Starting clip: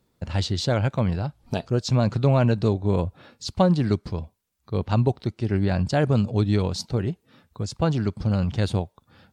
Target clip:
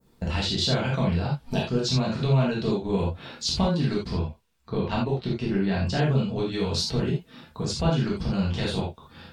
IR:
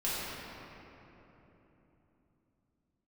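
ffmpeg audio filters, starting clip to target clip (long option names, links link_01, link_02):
-filter_complex "[0:a]adynamicequalizer=threshold=0.00562:dfrequency=3300:dqfactor=0.87:tfrequency=3300:tqfactor=0.87:attack=5:release=100:ratio=0.375:range=3:mode=boostabove:tftype=bell,acompressor=threshold=-28dB:ratio=6,asettb=1/sr,asplit=3[link_01][link_02][link_03];[link_01]atrim=end=4.114[link_04];[link_02]atrim=start=4.11:end=6.52,asetpts=PTS-STARTPTS,afade=type=in:duration=0.004:curve=qsin,afade=type=out:start_time=2.406:duration=0.004:curve=qsin,highshelf=frequency=7200:gain=-10[link_05];[link_03]atrim=start=6.516[link_06];[link_04][link_05]acrossfade=duration=0.004:curve1=hsin:curve2=qsin[link_07];[link_07][link_06]acrossfade=duration=0.004:curve1=qsin:curve2=hsin[link_08];[1:a]atrim=start_sample=2205,afade=type=out:start_time=0.14:duration=0.01,atrim=end_sample=6615[link_09];[link_08][link_09]afir=irnorm=-1:irlink=0,volume=3.5dB"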